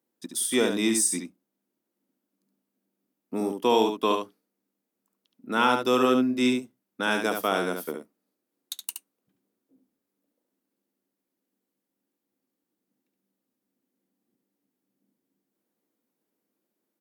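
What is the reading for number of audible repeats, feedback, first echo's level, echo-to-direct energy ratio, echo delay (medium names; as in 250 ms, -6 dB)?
1, no regular repeats, -6.0 dB, -6.0 dB, 71 ms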